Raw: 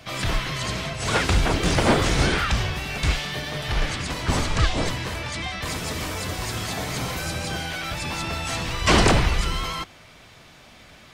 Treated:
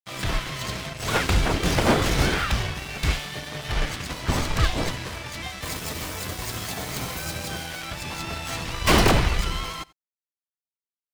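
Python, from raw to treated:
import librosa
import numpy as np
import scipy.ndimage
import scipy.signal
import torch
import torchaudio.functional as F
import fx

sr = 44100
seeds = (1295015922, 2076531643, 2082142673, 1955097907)

y = fx.tracing_dist(x, sr, depth_ms=0.088)
y = fx.high_shelf(y, sr, hz=11000.0, db=10.5, at=(5.44, 7.85))
y = np.sign(y) * np.maximum(np.abs(y) - 10.0 ** (-35.0 / 20.0), 0.0)
y = y + 10.0 ** (-23.0 / 20.0) * np.pad(y, (int(88 * sr / 1000.0), 0))[:len(y)]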